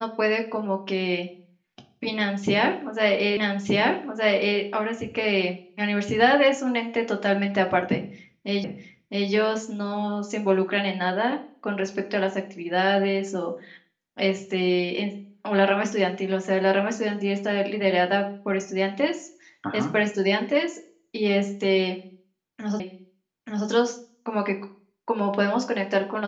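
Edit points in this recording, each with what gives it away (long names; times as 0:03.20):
0:03.37: the same again, the last 1.22 s
0:08.64: the same again, the last 0.66 s
0:22.80: the same again, the last 0.88 s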